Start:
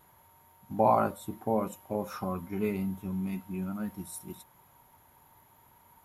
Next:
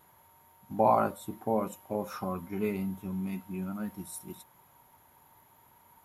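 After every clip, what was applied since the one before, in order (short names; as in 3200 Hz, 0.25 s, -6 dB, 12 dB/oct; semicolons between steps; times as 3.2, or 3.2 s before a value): low shelf 89 Hz -6.5 dB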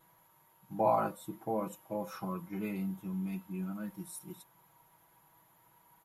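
comb 6.1 ms, depth 94%; gain -6.5 dB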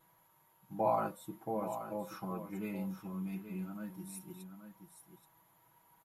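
echo 0.828 s -10 dB; gain -3 dB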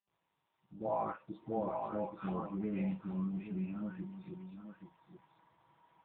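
opening faded in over 1.86 s; dispersion highs, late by 0.139 s, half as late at 1000 Hz; gain +3.5 dB; AMR-NB 6.7 kbps 8000 Hz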